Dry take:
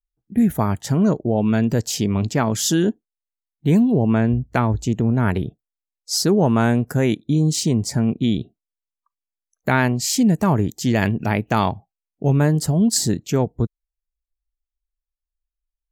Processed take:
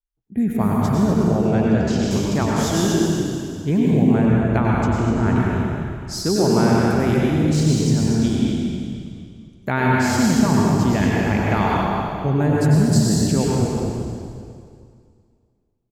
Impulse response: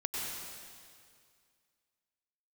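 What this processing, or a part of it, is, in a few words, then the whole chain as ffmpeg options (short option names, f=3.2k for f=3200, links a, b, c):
swimming-pool hall: -filter_complex "[1:a]atrim=start_sample=2205[a];[0:a][a]afir=irnorm=-1:irlink=0,highshelf=f=4.4k:g=-7,asettb=1/sr,asplit=3[b][c][d];[b]atrim=end=1.504[e];[c]atrim=start=1.5:end=2.11,asetpts=PTS-STARTPTS,afade=t=in:d=0.004:c=qsin,afade=t=out:st=0.606:d=0.004:c=qsin,lowpass=6.1k[f];[d]atrim=start=2.106[g];[e][f]acrossfade=d=0.004:c1=hsin:c2=qsin[h];[h][g]acrossfade=d=0.004:c1=qsin:c2=hsin,asplit=5[i][j][k][l][m];[j]adelay=245,afreqshift=-32,volume=-8.5dB[n];[k]adelay=490,afreqshift=-64,volume=-17.4dB[o];[l]adelay=735,afreqshift=-96,volume=-26.2dB[p];[m]adelay=980,afreqshift=-128,volume=-35.1dB[q];[i][n][o][p][q]amix=inputs=5:normalize=0,volume=-2.5dB"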